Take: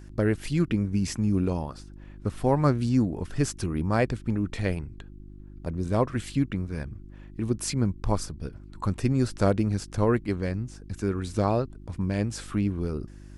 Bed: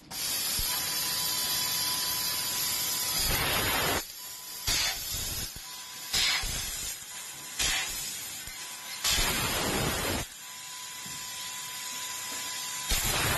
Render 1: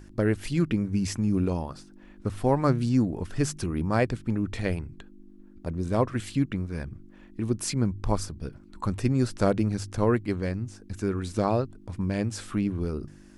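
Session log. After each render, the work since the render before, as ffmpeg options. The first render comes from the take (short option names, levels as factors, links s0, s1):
-af "bandreject=f=50:t=h:w=4,bandreject=f=100:t=h:w=4,bandreject=f=150:t=h:w=4"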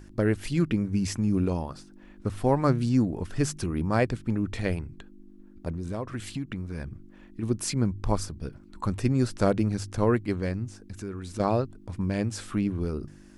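-filter_complex "[0:a]asettb=1/sr,asplit=3[s0][s1][s2];[s0]atrim=end=5.714[s3];[s1]atrim=start=5.71:end=7.43,asetpts=PTS-STARTPTS,afade=t=in:d=0.004:c=qsin,afade=t=out:st=1.716:d=0.004:c=qsin,acompressor=threshold=0.0355:ratio=4:attack=3.2:release=140:knee=1:detection=peak[s4];[s2]atrim=start=7.426[s5];[s3][s4]acrossfade=d=0.004:c1=hsin:c2=qsin[s6];[s6][s5]acrossfade=d=0.004:c1=qsin:c2=hsin,asettb=1/sr,asplit=3[s7][s8][s9];[s7]atrim=end=10.774[s10];[s8]atrim=start=10.77:end=11.4,asetpts=PTS-STARTPTS,afade=t=in:d=0.004:c=qsin,afade=t=out:st=0.626:d=0.004:c=qsin,acompressor=threshold=0.0141:ratio=2:attack=3.2:release=140:knee=1:detection=peak[s11];[s9]atrim=start=11.396[s12];[s10][s11]acrossfade=d=0.004:c1=hsin:c2=qsin[s13];[s13][s12]acrossfade=d=0.004:c1=qsin:c2=hsin"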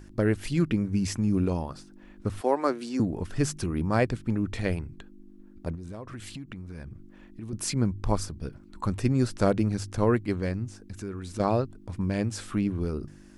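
-filter_complex "[0:a]asettb=1/sr,asplit=3[s0][s1][s2];[s0]atrim=end=2.414[s3];[s1]atrim=start=2.41:end=3,asetpts=PTS-STARTPTS,afade=t=in:d=0.004:c=qsin,afade=t=out:st=0.586:d=0.004:c=qsin,highpass=f=300:w=0.5412,highpass=f=300:w=1.3066[s4];[s2]atrim=start=2.996[s5];[s3][s4]acrossfade=d=0.004:c1=hsin:c2=qsin[s6];[s6][s5]acrossfade=d=0.004:c1=qsin:c2=hsin,asettb=1/sr,asplit=3[s7][s8][s9];[s7]atrim=end=5.754[s10];[s8]atrim=start=5.75:end=7.53,asetpts=PTS-STARTPTS,afade=t=in:d=0.004:c=qsin,afade=t=out:st=1.776:d=0.004:c=qsin,acompressor=threshold=0.0126:ratio=2.5:attack=3.2:release=140:knee=1:detection=peak[s11];[s9]atrim=start=7.526[s12];[s10][s11]acrossfade=d=0.004:c1=hsin:c2=qsin[s13];[s13][s12]acrossfade=d=0.004:c1=qsin:c2=hsin"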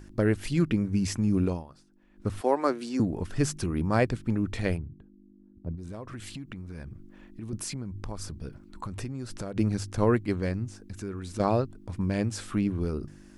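-filter_complex "[0:a]asplit=3[s0][s1][s2];[s0]afade=t=out:st=4.76:d=0.02[s3];[s1]bandpass=f=110:t=q:w=0.58,afade=t=in:st=4.76:d=0.02,afade=t=out:st=5.77:d=0.02[s4];[s2]afade=t=in:st=5.77:d=0.02[s5];[s3][s4][s5]amix=inputs=3:normalize=0,asplit=3[s6][s7][s8];[s6]afade=t=out:st=7.56:d=0.02[s9];[s7]acompressor=threshold=0.0282:ratio=10:attack=3.2:release=140:knee=1:detection=peak,afade=t=in:st=7.56:d=0.02,afade=t=out:st=9.55:d=0.02[s10];[s8]afade=t=in:st=9.55:d=0.02[s11];[s9][s10][s11]amix=inputs=3:normalize=0,asplit=3[s12][s13][s14];[s12]atrim=end=1.64,asetpts=PTS-STARTPTS,afade=t=out:st=1.47:d=0.17:silence=0.237137[s15];[s13]atrim=start=1.64:end=2.11,asetpts=PTS-STARTPTS,volume=0.237[s16];[s14]atrim=start=2.11,asetpts=PTS-STARTPTS,afade=t=in:d=0.17:silence=0.237137[s17];[s15][s16][s17]concat=n=3:v=0:a=1"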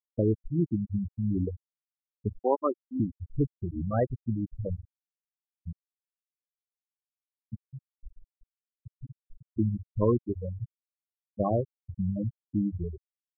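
-af "adynamicequalizer=threshold=0.0141:dfrequency=210:dqfactor=1.1:tfrequency=210:tqfactor=1.1:attack=5:release=100:ratio=0.375:range=2.5:mode=cutabove:tftype=bell,afftfilt=real='re*gte(hypot(re,im),0.2)':imag='im*gte(hypot(re,im),0.2)':win_size=1024:overlap=0.75"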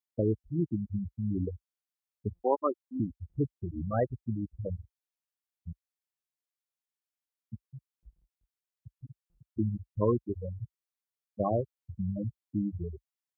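-af "highpass=f=50:w=0.5412,highpass=f=50:w=1.3066,equalizer=f=170:w=0.39:g=-3.5"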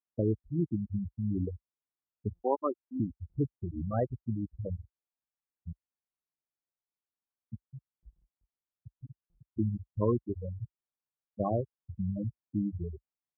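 -af "lowpass=1200,equalizer=f=530:w=1.5:g=-2.5"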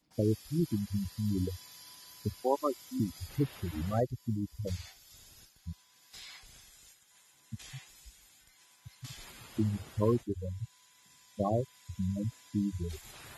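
-filter_complex "[1:a]volume=0.075[s0];[0:a][s0]amix=inputs=2:normalize=0"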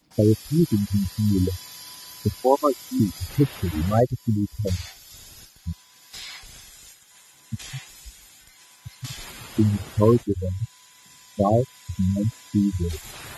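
-af "volume=3.55"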